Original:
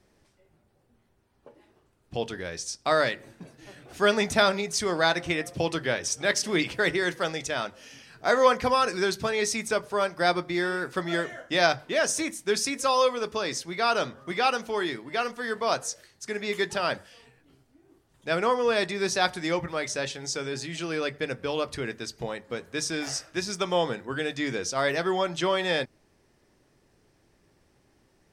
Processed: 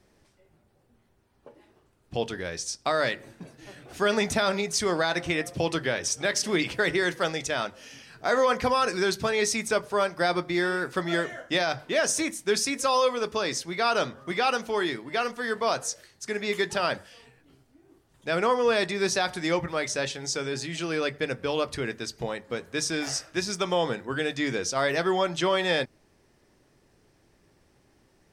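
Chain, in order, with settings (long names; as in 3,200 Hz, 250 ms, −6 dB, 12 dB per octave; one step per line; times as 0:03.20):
brickwall limiter −15.5 dBFS, peak gain reduction 10 dB
level +1.5 dB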